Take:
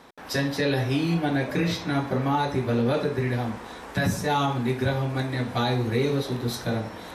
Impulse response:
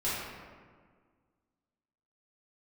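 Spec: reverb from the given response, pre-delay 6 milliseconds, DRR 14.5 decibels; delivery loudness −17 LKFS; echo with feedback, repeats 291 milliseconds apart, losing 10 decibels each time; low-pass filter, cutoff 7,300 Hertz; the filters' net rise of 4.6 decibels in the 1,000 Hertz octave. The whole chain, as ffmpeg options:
-filter_complex "[0:a]lowpass=7300,equalizer=frequency=1000:width_type=o:gain=6,aecho=1:1:291|582|873|1164:0.316|0.101|0.0324|0.0104,asplit=2[link_01][link_02];[1:a]atrim=start_sample=2205,adelay=6[link_03];[link_02][link_03]afir=irnorm=-1:irlink=0,volume=-22.5dB[link_04];[link_01][link_04]amix=inputs=2:normalize=0,volume=7dB"

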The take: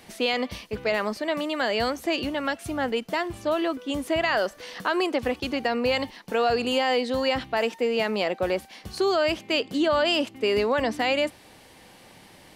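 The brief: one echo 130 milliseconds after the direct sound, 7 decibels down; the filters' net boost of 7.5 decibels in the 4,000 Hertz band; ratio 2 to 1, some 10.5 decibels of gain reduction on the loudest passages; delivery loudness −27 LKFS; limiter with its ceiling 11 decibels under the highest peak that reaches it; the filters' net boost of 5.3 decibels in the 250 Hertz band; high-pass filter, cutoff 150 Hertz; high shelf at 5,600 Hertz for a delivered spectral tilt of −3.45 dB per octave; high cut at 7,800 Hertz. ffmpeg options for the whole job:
ffmpeg -i in.wav -af "highpass=150,lowpass=7800,equalizer=frequency=250:width_type=o:gain=7,equalizer=frequency=4000:width_type=o:gain=8.5,highshelf=frequency=5600:gain=6.5,acompressor=threshold=-35dB:ratio=2,alimiter=level_in=3.5dB:limit=-24dB:level=0:latency=1,volume=-3.5dB,aecho=1:1:130:0.447,volume=9dB" out.wav

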